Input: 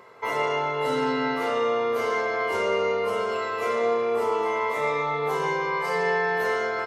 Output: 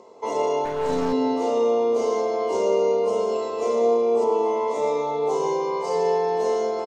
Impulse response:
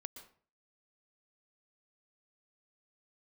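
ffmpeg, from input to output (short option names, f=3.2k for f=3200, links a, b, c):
-filter_complex "[0:a]asettb=1/sr,asplit=3[a][b][c];[a]atrim=end=4.244[d];[b]atrim=start=4.24:end=4.68,asetpts=PTS-STARTPTS,afade=t=in:d=0.004:c=qsin,afade=t=out:st=0.436:d=0.004:c=qsin,acrossover=split=4500[e][f];[f]acompressor=threshold=-59dB:ratio=4:attack=1:release=60[g];[e][g]amix=inputs=2:normalize=0[h];[c]atrim=start=4.676[i];[d][h]acrossfade=d=0.004:c1=hsin:c2=qsin[j];[j][i]acrossfade=d=0.004:c1=qsin:c2=hsin,firequalizer=gain_entry='entry(150,0);entry(220,13);entry(940,8);entry(1500,-14);entry(2600,0);entry(6600,14);entry(12000,-13)':delay=0.05:min_phase=1,asettb=1/sr,asplit=3[k][l][m];[k]atrim=end=0.654[n];[l]atrim=start=0.65:end=1.13,asetpts=PTS-STARTPTS,afade=t=in:d=0.004:c=qsin,afade=t=out:st=0.476:d=0.004:c=qsin,aeval=exprs='clip(val(0),-1,0.0841)':c=same[o];[m]atrim=start=1.126[p];[n][o]acrossfade=d=0.004:c1=hsin:c2=qsin[q];[q][p]acrossfade=d=0.004:c1=qsin:c2=hsin,volume=-6.5dB"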